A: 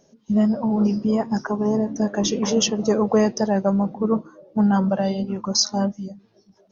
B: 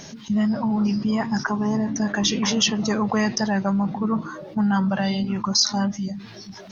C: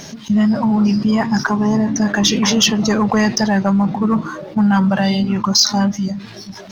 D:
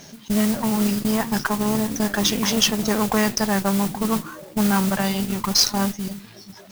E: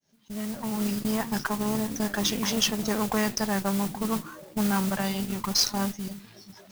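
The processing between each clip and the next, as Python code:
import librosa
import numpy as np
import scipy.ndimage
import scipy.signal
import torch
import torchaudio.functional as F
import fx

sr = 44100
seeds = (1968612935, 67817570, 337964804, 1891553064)

y1 = fx.graphic_eq(x, sr, hz=(125, 500, 1000, 2000, 4000), db=(4, -10, 3, 8, 7))
y1 = fx.env_flatten(y1, sr, amount_pct=50)
y1 = y1 * 10.0 ** (-5.5 / 20.0)
y2 = fx.leveller(y1, sr, passes=1)
y2 = y2 * 10.0 ** (3.5 / 20.0)
y3 = fx.cheby_harmonics(y2, sr, harmonics=(3, 6), levels_db=(-13, -29), full_scale_db=-2.5)
y3 = fx.mod_noise(y3, sr, seeds[0], snr_db=11)
y4 = fx.fade_in_head(y3, sr, length_s=0.99)
y4 = y4 * 10.0 ** (-6.0 / 20.0)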